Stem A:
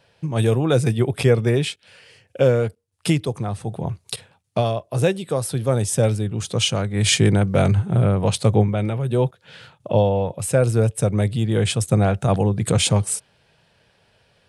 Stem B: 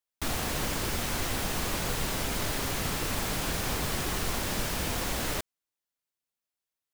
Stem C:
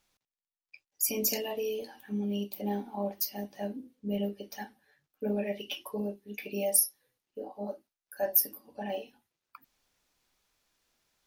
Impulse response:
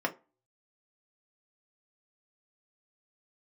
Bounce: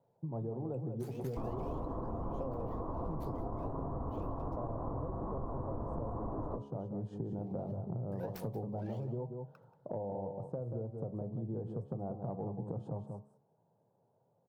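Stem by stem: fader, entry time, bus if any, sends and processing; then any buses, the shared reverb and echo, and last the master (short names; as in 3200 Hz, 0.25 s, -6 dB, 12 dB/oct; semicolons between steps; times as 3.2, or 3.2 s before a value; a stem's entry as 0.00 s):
-10.5 dB, 0.00 s, no send, echo send -8 dB, elliptic band-pass 120–910 Hz, stop band 40 dB; compressor 2.5:1, threshold -24 dBFS, peak gain reduction 8.5 dB
-3.5 dB, 1.15 s, send -9 dB, no echo send, octaver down 1 oct, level +4 dB; Chebyshev low-pass 1100 Hz, order 5
-12.0 dB, 0.00 s, muted 4.56–7.3, no send, echo send -17 dB, median filter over 15 samples; shaped vibrato saw up 5 Hz, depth 250 cents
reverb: on, RT60 0.30 s, pre-delay 3 ms
echo: echo 0.183 s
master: de-hum 69.96 Hz, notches 19; compressor, threshold -35 dBFS, peak gain reduction 9 dB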